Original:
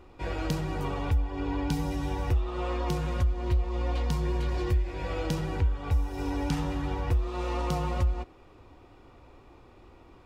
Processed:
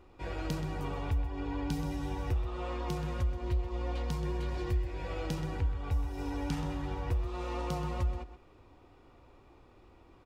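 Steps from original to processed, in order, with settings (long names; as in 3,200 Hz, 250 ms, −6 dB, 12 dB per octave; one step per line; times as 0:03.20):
slap from a distant wall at 22 metres, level −11 dB
level −5.5 dB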